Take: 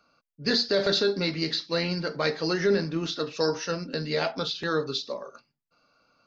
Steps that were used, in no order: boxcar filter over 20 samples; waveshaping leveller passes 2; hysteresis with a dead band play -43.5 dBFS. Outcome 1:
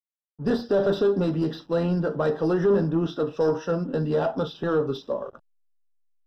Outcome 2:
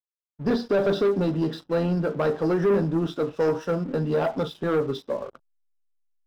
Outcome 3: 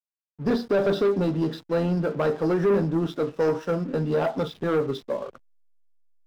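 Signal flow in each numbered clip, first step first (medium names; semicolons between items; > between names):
waveshaping leveller > hysteresis with a dead band > boxcar filter; hysteresis with a dead band > boxcar filter > waveshaping leveller; boxcar filter > waveshaping leveller > hysteresis with a dead band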